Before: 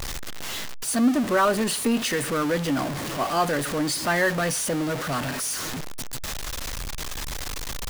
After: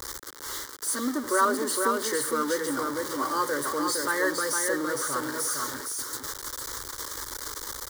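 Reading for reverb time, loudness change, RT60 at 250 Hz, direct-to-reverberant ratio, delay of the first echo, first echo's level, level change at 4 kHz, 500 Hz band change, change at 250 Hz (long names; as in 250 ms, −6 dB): no reverb audible, −2.5 dB, no reverb audible, no reverb audible, 461 ms, −4.0 dB, −4.5 dB, −3.0 dB, −7.0 dB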